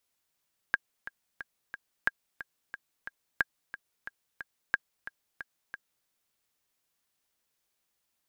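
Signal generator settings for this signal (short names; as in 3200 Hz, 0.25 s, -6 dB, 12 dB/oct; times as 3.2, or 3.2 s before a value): metronome 180 bpm, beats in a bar 4, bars 4, 1620 Hz, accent 14.5 dB -11 dBFS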